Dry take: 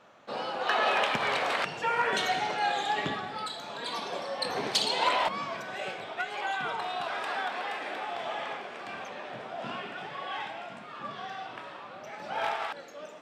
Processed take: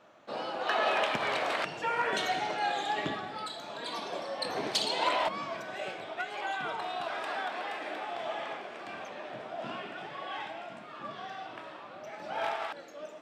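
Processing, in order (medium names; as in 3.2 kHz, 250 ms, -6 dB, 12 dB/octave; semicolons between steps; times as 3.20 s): small resonant body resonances 320/630 Hz, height 6 dB; trim -3 dB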